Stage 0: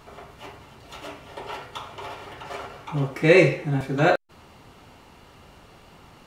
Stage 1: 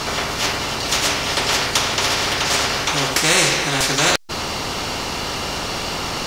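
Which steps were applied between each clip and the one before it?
bell 5300 Hz +10.5 dB 1.1 oct; spectral compressor 4:1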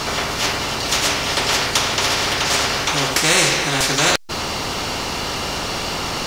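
G.711 law mismatch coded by mu

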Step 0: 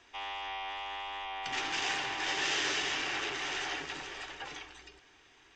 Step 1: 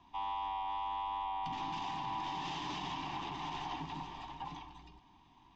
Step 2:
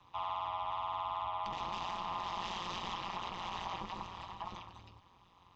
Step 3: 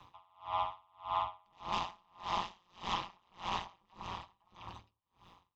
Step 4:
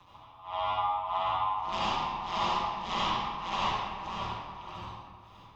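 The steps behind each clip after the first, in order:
EQ curve 120 Hz 0 dB, 170 Hz +8 dB, 290 Hz -1 dB, 470 Hz -22 dB, 990 Hz +5 dB, 1400 Hz -23 dB, 3600 Hz -12 dB, 9400 Hz -27 dB; limiter -36 dBFS, peak gain reduction 6.5 dB; gain +5 dB
frequency shift +48 Hz; AM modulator 180 Hz, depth 100%; bell 330 Hz -7.5 dB 1.2 oct; gain +5 dB
dB-linear tremolo 1.7 Hz, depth 38 dB; gain +6.5 dB
reverb RT60 1.8 s, pre-delay 61 ms, DRR -8.5 dB

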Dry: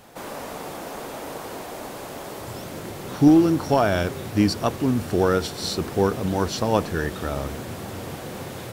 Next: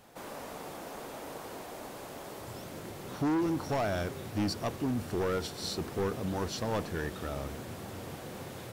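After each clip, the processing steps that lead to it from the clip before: hard clip -18 dBFS, distortion -8 dB; gain -8.5 dB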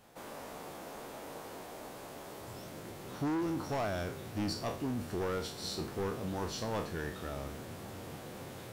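spectral trails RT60 0.41 s; gain -4.5 dB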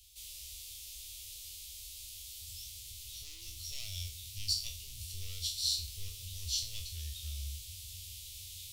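inverse Chebyshev band-stop 140–1700 Hz, stop band 40 dB; gain +9 dB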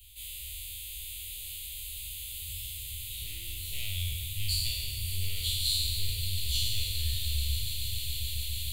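spectral trails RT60 1.63 s; fixed phaser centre 2400 Hz, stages 4; swelling echo 0.144 s, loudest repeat 8, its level -14.5 dB; gain +7 dB

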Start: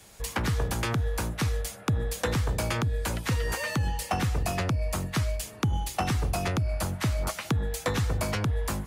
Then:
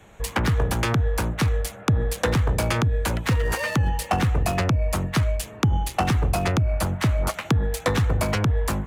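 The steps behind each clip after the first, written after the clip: Wiener smoothing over 9 samples; gain +6 dB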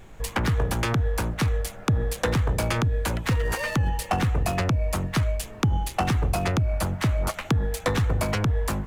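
added noise brown -43 dBFS; gain -2 dB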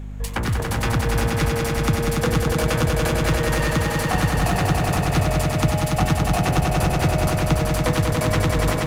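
swelling echo 95 ms, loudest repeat 5, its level -5 dB; hum 50 Hz, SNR 12 dB

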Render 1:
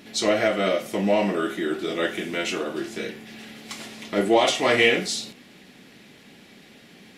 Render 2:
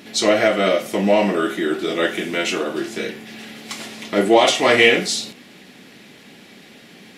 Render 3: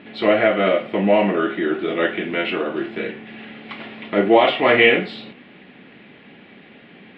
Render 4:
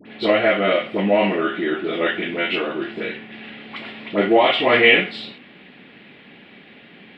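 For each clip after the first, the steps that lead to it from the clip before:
low shelf 69 Hz -11 dB; gain +5.5 dB
inverse Chebyshev low-pass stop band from 5800 Hz, stop band 40 dB
high shelf 3100 Hz +9 dB; dispersion highs, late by 58 ms, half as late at 1100 Hz; gain -1.5 dB

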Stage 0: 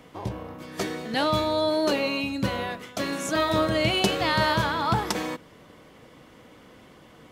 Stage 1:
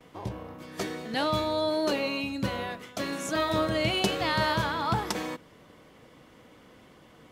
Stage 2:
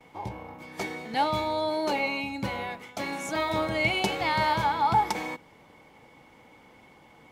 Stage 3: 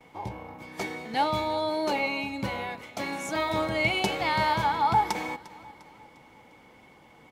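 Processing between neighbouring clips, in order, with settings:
gate with hold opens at -43 dBFS; gain -3.5 dB
small resonant body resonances 850/2200 Hz, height 15 dB, ringing for 40 ms; gain -2.5 dB
feedback echo 0.351 s, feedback 47%, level -19.5 dB

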